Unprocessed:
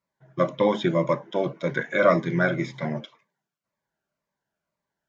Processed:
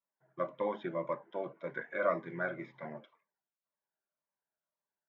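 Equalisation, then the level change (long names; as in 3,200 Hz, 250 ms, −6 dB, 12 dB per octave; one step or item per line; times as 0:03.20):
high-pass filter 590 Hz 6 dB per octave
low-pass filter 1,700 Hz 12 dB per octave
−9.0 dB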